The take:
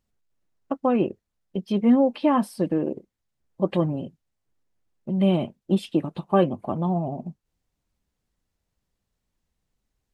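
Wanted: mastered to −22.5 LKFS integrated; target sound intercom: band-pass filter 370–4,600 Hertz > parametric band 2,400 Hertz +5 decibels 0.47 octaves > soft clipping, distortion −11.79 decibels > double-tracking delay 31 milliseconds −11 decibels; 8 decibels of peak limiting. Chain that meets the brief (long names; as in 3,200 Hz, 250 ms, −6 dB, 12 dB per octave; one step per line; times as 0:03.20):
brickwall limiter −15.5 dBFS
band-pass filter 370–4,600 Hz
parametric band 2,400 Hz +5 dB 0.47 octaves
soft clipping −25.5 dBFS
double-tracking delay 31 ms −11 dB
level +12 dB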